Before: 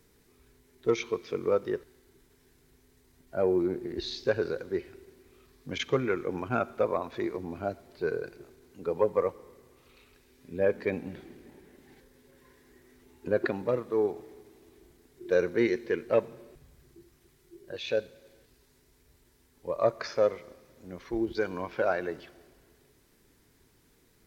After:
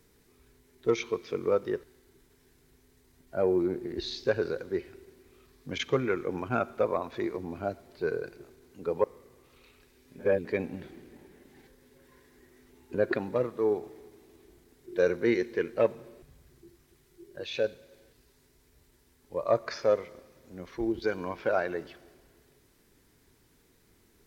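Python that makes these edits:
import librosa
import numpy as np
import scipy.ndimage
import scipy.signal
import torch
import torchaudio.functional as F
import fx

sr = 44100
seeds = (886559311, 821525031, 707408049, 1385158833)

y = fx.edit(x, sr, fx.cut(start_s=9.04, length_s=0.33),
    fx.reverse_span(start_s=10.52, length_s=0.26), tone=tone)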